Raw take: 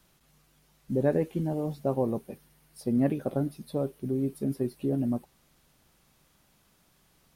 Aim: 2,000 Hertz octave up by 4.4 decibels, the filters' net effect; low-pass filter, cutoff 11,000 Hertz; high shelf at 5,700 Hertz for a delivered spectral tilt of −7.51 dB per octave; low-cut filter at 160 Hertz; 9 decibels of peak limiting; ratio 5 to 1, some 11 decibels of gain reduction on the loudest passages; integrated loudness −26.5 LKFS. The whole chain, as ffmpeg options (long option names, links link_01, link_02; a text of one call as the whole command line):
ffmpeg -i in.wav -af "highpass=160,lowpass=11000,equalizer=frequency=2000:width_type=o:gain=6,highshelf=frequency=5700:gain=-4.5,acompressor=threshold=-33dB:ratio=5,volume=14.5dB,alimiter=limit=-15.5dB:level=0:latency=1" out.wav